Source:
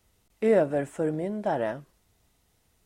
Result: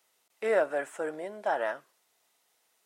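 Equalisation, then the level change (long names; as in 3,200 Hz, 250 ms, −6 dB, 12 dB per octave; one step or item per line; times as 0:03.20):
high-pass filter 600 Hz 12 dB per octave
dynamic equaliser 1,400 Hz, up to +6 dB, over −49 dBFS, Q 1.9
0.0 dB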